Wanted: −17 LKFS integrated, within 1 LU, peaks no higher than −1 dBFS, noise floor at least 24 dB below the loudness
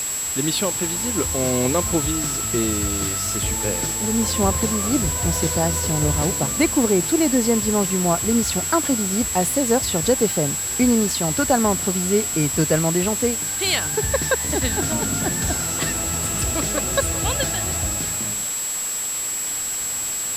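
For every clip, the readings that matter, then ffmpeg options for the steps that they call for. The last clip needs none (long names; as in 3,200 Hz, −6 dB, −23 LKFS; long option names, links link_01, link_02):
interfering tone 7,700 Hz; level of the tone −24 dBFS; background noise floor −26 dBFS; target noise floor −44 dBFS; integrated loudness −20.0 LKFS; sample peak −5.0 dBFS; target loudness −17.0 LKFS
→ -af "bandreject=frequency=7700:width=30"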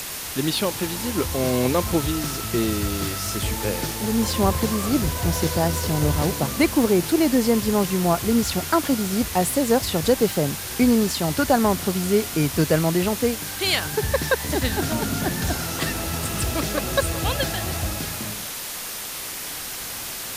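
interfering tone none found; background noise floor −32 dBFS; target noise floor −47 dBFS
→ -af "afftdn=noise_reduction=15:noise_floor=-32"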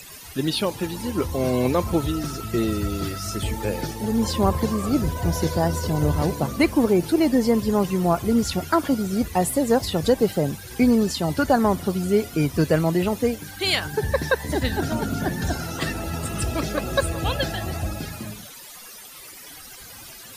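background noise floor −42 dBFS; target noise floor −47 dBFS
→ -af "afftdn=noise_reduction=6:noise_floor=-42"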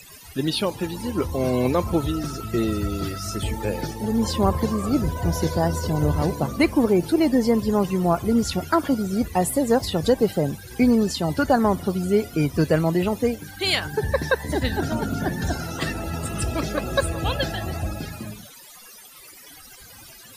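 background noise floor −45 dBFS; target noise floor −47 dBFS
→ -af "afftdn=noise_reduction=6:noise_floor=-45"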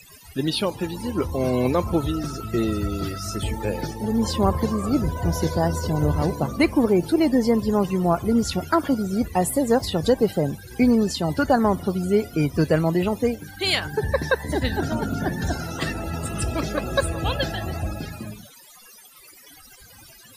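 background noise floor −48 dBFS; integrated loudness −23.5 LKFS; sample peak −6.5 dBFS; target loudness −17.0 LKFS
→ -af "volume=6.5dB,alimiter=limit=-1dB:level=0:latency=1"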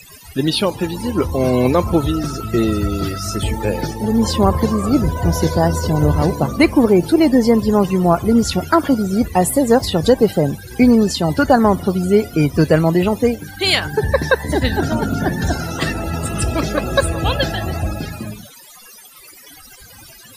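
integrated loudness −17.0 LKFS; sample peak −1.0 dBFS; background noise floor −42 dBFS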